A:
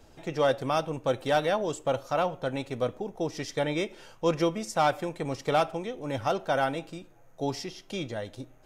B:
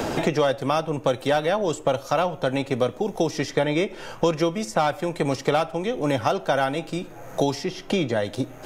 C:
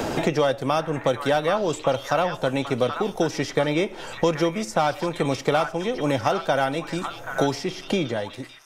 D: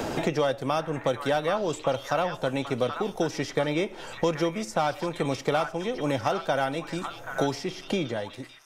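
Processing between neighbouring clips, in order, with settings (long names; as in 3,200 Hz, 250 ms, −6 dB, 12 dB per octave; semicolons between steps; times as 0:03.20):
multiband upward and downward compressor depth 100%; level +4.5 dB
fade-out on the ending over 0.72 s; echo through a band-pass that steps 781 ms, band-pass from 1,400 Hz, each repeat 1.4 octaves, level −3 dB
hard clipping −9 dBFS, distortion −40 dB; level −4 dB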